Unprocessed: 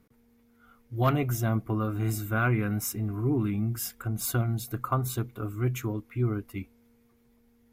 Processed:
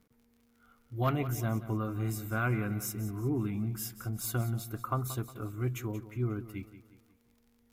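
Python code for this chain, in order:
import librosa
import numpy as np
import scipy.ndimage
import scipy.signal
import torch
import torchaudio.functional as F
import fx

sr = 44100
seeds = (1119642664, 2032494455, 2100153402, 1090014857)

p1 = fx.dmg_crackle(x, sr, seeds[0], per_s=54.0, level_db=-49.0)
p2 = p1 + fx.echo_feedback(p1, sr, ms=180, feedback_pct=43, wet_db=-14, dry=0)
y = p2 * 10.0 ** (-5.0 / 20.0)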